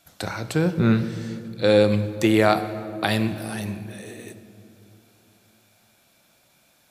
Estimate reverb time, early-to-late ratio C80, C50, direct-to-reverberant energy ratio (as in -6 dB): 2.9 s, 13.0 dB, 12.0 dB, 10.5 dB